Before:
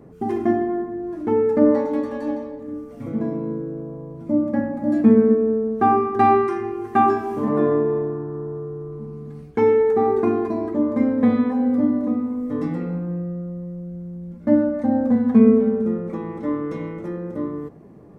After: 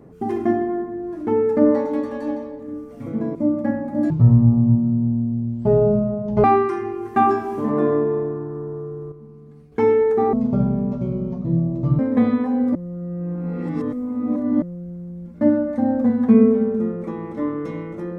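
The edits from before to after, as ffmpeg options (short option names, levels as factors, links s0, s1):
-filter_complex "[0:a]asplit=10[s0][s1][s2][s3][s4][s5][s6][s7][s8][s9];[s0]atrim=end=3.352[s10];[s1]atrim=start=4.238:end=4.994[s11];[s2]atrim=start=4.99:end=6.23,asetpts=PTS-STARTPTS,asetrate=23373,aresample=44100,atrim=end_sample=103177,asetpts=PTS-STARTPTS[s12];[s3]atrim=start=6.226:end=8.912[s13];[s4]atrim=start=8.908:end=9.512,asetpts=PTS-STARTPTS,volume=0.376[s14];[s5]atrim=start=9.508:end=10.124[s15];[s6]atrim=start=10.12:end=11.05,asetpts=PTS-STARTPTS,asetrate=24696,aresample=44100[s16];[s7]atrim=start=11.046:end=11.812[s17];[s8]atrim=start=11.808:end=13.682,asetpts=PTS-STARTPTS,areverse[s18];[s9]atrim=start=13.678[s19];[s10][s11]acrossfade=d=0.004:c1=hsin:c2=hsin[s20];[s20][s12]acrossfade=d=0.004:c1=hsin:c2=hsin[s21];[s21][s13]acrossfade=d=0.004:c1=hsin:c2=hsin[s22];[s22][s14]acrossfade=d=0.004:c1=hsin:c2=hsin[s23];[s23][s15]acrossfade=d=0.004:c1=hsin:c2=hsin[s24];[s24][s16]acrossfade=d=0.004:c1=hsin:c2=hsin[s25];[s25][s17]acrossfade=d=0.004:c1=hsin:c2=hsin[s26];[s26][s18]acrossfade=d=0.004:c1=hsin:c2=hsin[s27];[s27][s19]acrossfade=d=0.004:c1=hsin:c2=hsin"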